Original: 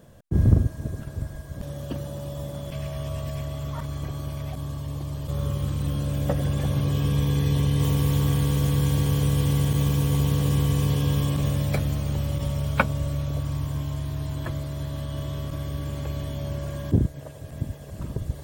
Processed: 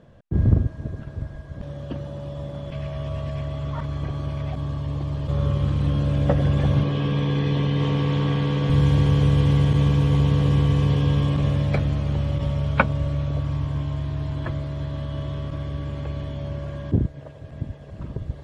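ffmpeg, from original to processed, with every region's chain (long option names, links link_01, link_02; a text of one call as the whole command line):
ffmpeg -i in.wav -filter_complex "[0:a]asettb=1/sr,asplit=3[link_01][link_02][link_03];[link_01]atrim=end=6.834[link_04];[link_02]atrim=start=6.83:end=8.7,asetpts=PTS-STARTPTS,afade=type=in:duration=0.004:curve=qsin,afade=type=out:start_time=1.866:duration=0.004:curve=qsin,highpass=160,lowpass=3600,aemphasis=mode=production:type=cd[link_05];[link_03]atrim=start=8.696[link_06];[link_04][link_05]acrossfade=duration=0.004:curve1=hsin:curve2=qsin[link_07];[link_07][link_06]acrossfade=duration=0.004:curve1=qsin:curve2=hsin,lowpass=3300,dynaudnorm=framelen=300:gausssize=21:maxgain=5dB" out.wav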